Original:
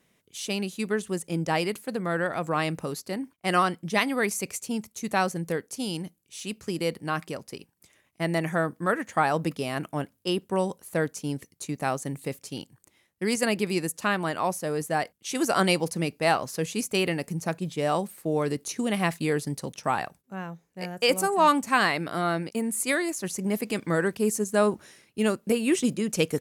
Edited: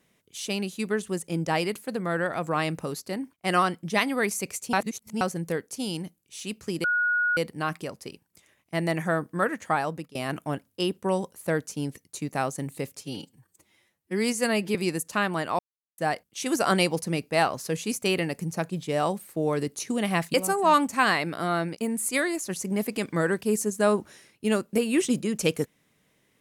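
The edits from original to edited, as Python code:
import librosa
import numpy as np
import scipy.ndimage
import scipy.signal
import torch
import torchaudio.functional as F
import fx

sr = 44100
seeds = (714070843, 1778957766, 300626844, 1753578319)

y = fx.edit(x, sr, fx.reverse_span(start_s=4.73, length_s=0.48),
    fx.insert_tone(at_s=6.84, length_s=0.53, hz=1450.0, db=-21.0),
    fx.fade_out_to(start_s=8.91, length_s=0.71, curve='qsin', floor_db=-22.5),
    fx.stretch_span(start_s=12.48, length_s=1.16, factor=1.5),
    fx.silence(start_s=14.48, length_s=0.39),
    fx.cut(start_s=19.23, length_s=1.85), tone=tone)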